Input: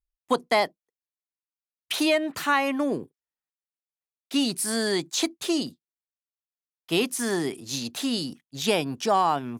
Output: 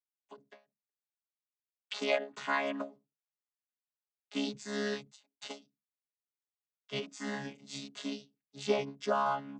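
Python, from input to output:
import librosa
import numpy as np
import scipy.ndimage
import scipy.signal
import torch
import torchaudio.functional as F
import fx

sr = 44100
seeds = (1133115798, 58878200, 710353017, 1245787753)

y = fx.chord_vocoder(x, sr, chord='bare fifth', root=49)
y = fx.highpass(y, sr, hz=1000.0, slope=6)
y = fx.end_taper(y, sr, db_per_s=210.0)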